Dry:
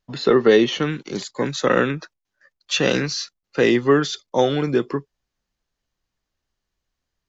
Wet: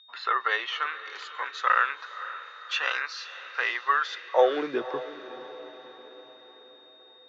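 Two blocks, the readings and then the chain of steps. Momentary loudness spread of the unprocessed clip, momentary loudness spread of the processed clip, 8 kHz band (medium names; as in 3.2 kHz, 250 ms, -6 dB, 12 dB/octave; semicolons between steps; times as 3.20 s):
13 LU, 19 LU, no reading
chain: whistle 3.7 kHz -44 dBFS; high-pass sweep 1.2 kHz -> 71 Hz, 4.16–5.02 s; three-band isolator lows -23 dB, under 400 Hz, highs -18 dB, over 3.8 kHz; on a send: echo that smears into a reverb 529 ms, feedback 52%, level -14 dB; on the sum: trim -5 dB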